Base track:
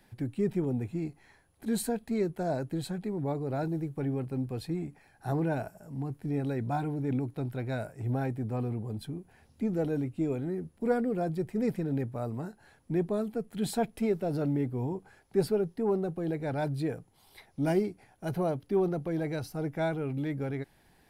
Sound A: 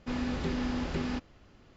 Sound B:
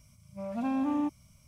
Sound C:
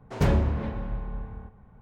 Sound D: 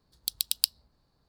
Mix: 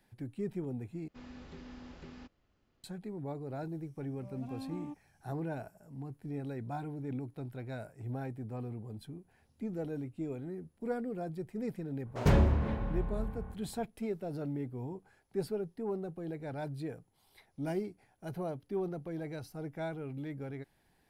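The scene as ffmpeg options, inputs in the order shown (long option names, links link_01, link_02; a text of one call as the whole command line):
ffmpeg -i bed.wav -i cue0.wav -i cue1.wav -i cue2.wav -filter_complex "[0:a]volume=-8dB[link_01];[2:a]equalizer=frequency=1400:width=1.5:gain=-4[link_02];[link_01]asplit=2[link_03][link_04];[link_03]atrim=end=1.084[link_05];[1:a]atrim=end=1.76,asetpts=PTS-STARTPTS,volume=-17dB[link_06];[link_04]atrim=start=2.836[link_07];[link_02]atrim=end=1.47,asetpts=PTS-STARTPTS,volume=-13.5dB,afade=type=in:duration=0.004:curve=hsin,afade=type=out:start_time=1.466:duration=0.004:curve=hsin,adelay=169785S[link_08];[3:a]atrim=end=1.81,asetpts=PTS-STARTPTS,volume=-2.5dB,afade=type=in:duration=0.004:curve=hsin,afade=type=out:start_time=1.806:duration=0.004:curve=hsin,adelay=12050[link_09];[link_05][link_06]acrossfade=duration=0.004:curve1=hsin:curve2=hsin[link_10];[link_10][link_07]acrossfade=duration=0.004:curve1=hsin:curve2=hsin[link_11];[link_11][link_08][link_09]amix=inputs=3:normalize=0" out.wav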